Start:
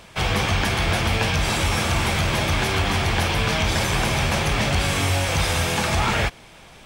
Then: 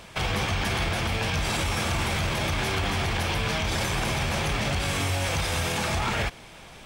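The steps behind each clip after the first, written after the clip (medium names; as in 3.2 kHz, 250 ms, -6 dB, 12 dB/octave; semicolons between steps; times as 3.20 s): peak limiter -18 dBFS, peak gain reduction 8 dB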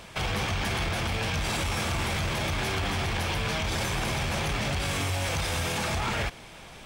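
saturation -22.5 dBFS, distortion -17 dB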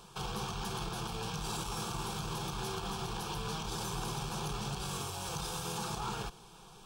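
static phaser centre 400 Hz, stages 8; trim -5 dB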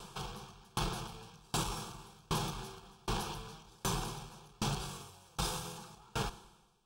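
reverberation RT60 2.3 s, pre-delay 98 ms, DRR 15 dB; sawtooth tremolo in dB decaying 1.3 Hz, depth 33 dB; trim +6.5 dB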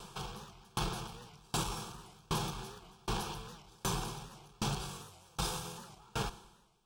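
warped record 78 rpm, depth 160 cents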